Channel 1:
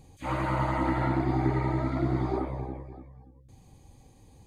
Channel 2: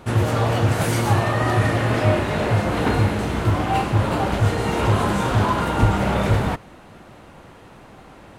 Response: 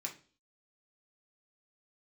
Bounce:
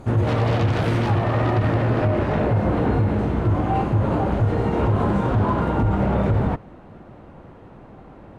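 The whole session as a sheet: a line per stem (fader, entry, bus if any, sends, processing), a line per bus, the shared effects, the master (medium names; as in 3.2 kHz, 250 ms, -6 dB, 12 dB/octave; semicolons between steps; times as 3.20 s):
-13.0 dB, 0.00 s, no send, treble shelf 4.8 kHz -6.5 dB; sine folder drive 17 dB, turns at -14 dBFS
-0.5 dB, 0.00 s, no send, low-pass 1.4 kHz 6 dB/octave; tilt shelf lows +3.5 dB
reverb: none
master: peak limiter -11.5 dBFS, peak gain reduction 9.5 dB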